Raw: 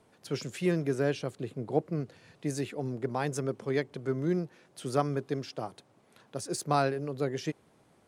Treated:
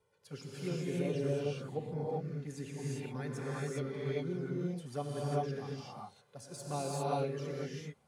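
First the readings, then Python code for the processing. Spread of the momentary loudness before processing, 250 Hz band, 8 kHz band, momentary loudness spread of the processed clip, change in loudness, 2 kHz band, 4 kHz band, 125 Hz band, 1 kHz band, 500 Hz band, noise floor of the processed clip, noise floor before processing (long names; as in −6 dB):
12 LU, −6.0 dB, −6.0 dB, 12 LU, −5.0 dB, −8.0 dB, −6.0 dB, −2.5 dB, −6.5 dB, −5.0 dB, −70 dBFS, −65 dBFS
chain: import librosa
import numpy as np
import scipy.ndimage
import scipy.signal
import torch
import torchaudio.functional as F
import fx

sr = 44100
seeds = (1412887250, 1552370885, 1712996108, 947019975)

y = fx.env_flanger(x, sr, rest_ms=2.1, full_db=-23.5)
y = fx.notch_comb(y, sr, f0_hz=320.0)
y = fx.rev_gated(y, sr, seeds[0], gate_ms=430, shape='rising', drr_db=-6.0)
y = y * 10.0 ** (-8.5 / 20.0)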